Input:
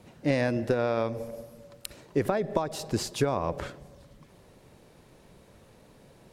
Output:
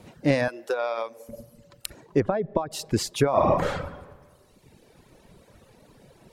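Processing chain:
0:00.48–0:01.29: high-pass filter 530 Hz 12 dB per octave
0:03.30–0:03.83: thrown reverb, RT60 1.5 s, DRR −7 dB
reverb reduction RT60 1.4 s
0:02.20–0:02.71: head-to-tape spacing loss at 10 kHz 33 dB
level +4.5 dB

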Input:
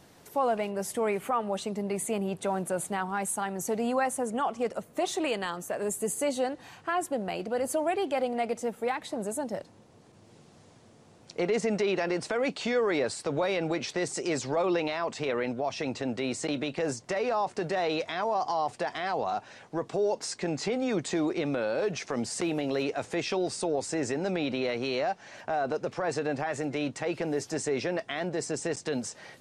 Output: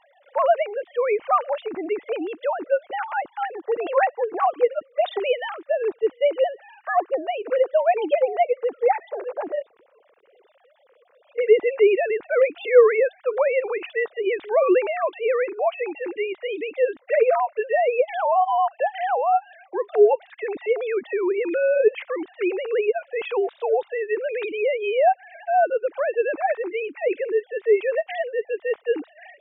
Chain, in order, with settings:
three sine waves on the formant tracks
0:22.79–0:23.56: notch comb filter 620 Hz
level +8 dB

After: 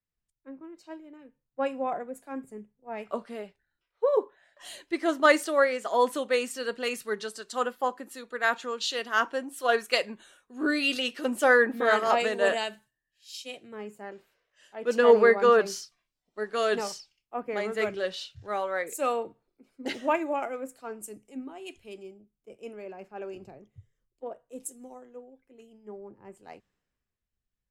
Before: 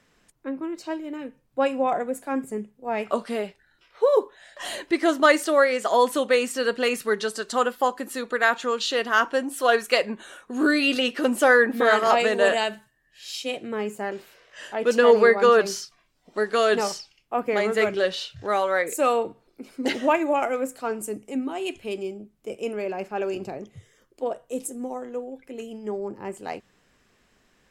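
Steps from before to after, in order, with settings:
multiband upward and downward expander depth 70%
level −7 dB

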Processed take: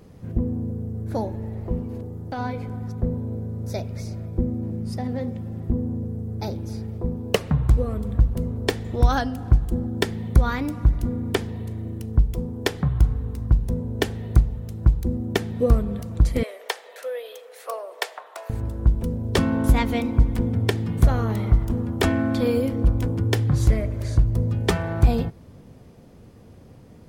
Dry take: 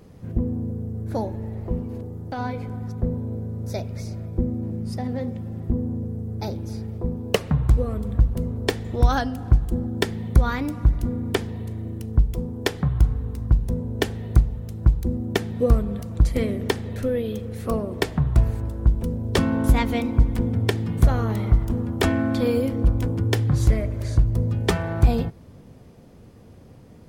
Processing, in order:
0:16.43–0:18.50: Butterworth high-pass 530 Hz 36 dB per octave

